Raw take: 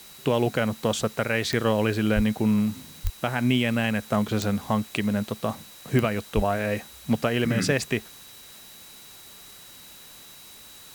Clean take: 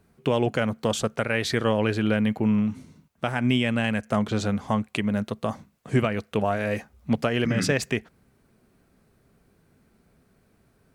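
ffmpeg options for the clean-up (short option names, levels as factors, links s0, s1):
-filter_complex "[0:a]adeclick=t=4,bandreject=f=3900:w=30,asplit=3[s0][s1][s2];[s0]afade=t=out:st=2.15:d=0.02[s3];[s1]highpass=f=140:w=0.5412,highpass=f=140:w=1.3066,afade=t=in:st=2.15:d=0.02,afade=t=out:st=2.27:d=0.02[s4];[s2]afade=t=in:st=2.27:d=0.02[s5];[s3][s4][s5]amix=inputs=3:normalize=0,asplit=3[s6][s7][s8];[s6]afade=t=out:st=3.03:d=0.02[s9];[s7]highpass=f=140:w=0.5412,highpass=f=140:w=1.3066,afade=t=in:st=3.03:d=0.02,afade=t=out:st=3.15:d=0.02[s10];[s8]afade=t=in:st=3.15:d=0.02[s11];[s9][s10][s11]amix=inputs=3:normalize=0,asplit=3[s12][s13][s14];[s12]afade=t=out:st=6.35:d=0.02[s15];[s13]highpass=f=140:w=0.5412,highpass=f=140:w=1.3066,afade=t=in:st=6.35:d=0.02,afade=t=out:st=6.47:d=0.02[s16];[s14]afade=t=in:st=6.47:d=0.02[s17];[s15][s16][s17]amix=inputs=3:normalize=0,afftdn=nr=17:nf=-47"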